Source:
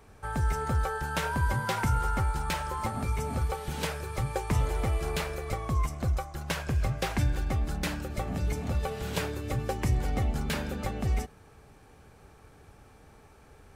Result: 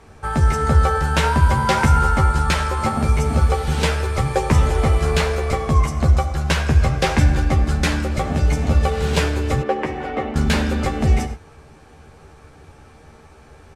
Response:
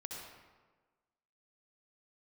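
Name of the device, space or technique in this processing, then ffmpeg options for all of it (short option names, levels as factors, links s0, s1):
keyed gated reverb: -filter_complex "[0:a]asplit=3[s0][s1][s2];[1:a]atrim=start_sample=2205[s3];[s1][s3]afir=irnorm=-1:irlink=0[s4];[s2]apad=whole_len=606582[s5];[s4][s5]sidechaingate=range=0.0224:threshold=0.00708:ratio=16:detection=peak,volume=0.631[s6];[s0][s6]amix=inputs=2:normalize=0,lowpass=8800,asettb=1/sr,asplit=3[s7][s8][s9];[s7]atrim=end=9.624[s10];[s8]atrim=start=9.62:end=10.36,asetpts=PTS-STARTPTS,afade=t=in:d=0.004:c=qsin,afade=t=out:st=0.736:d=0.004:c=qsin,acrossover=split=240 3100:gain=0.0794 1 0.1[s11][s12][s13];[s11][s12][s13]amix=inputs=3:normalize=0[s14];[s9]atrim=start=10.356[s15];[s10][s14]acrossfade=d=0.004:c1=hsin:c2=qsin[s16];[s16][s15]acrossfade=d=0.004:c1=qsin:c2=hsin,asplit=2[s17][s18];[s18]adelay=13,volume=0.562[s19];[s17][s19]amix=inputs=2:normalize=0,volume=2.51"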